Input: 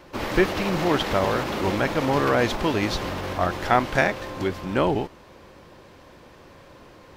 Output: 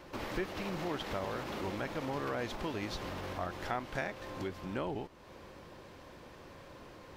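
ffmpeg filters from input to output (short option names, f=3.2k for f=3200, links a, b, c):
-af "acompressor=threshold=-39dB:ratio=2,volume=-4dB"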